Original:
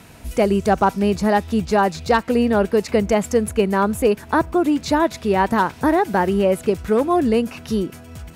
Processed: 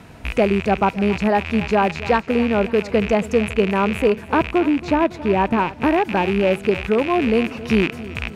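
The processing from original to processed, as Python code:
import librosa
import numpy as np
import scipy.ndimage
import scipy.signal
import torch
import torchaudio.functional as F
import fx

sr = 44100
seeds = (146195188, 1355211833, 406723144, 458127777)

y = fx.rattle_buzz(x, sr, strikes_db=-32.0, level_db=-12.0)
y = fx.lowpass(y, sr, hz=fx.steps((0.0, 2400.0), (4.59, 1200.0), (5.83, 2700.0)), slope=6)
y = fx.rider(y, sr, range_db=4, speed_s=0.5)
y = fx.echo_feedback(y, sr, ms=276, feedback_pct=49, wet_db=-17)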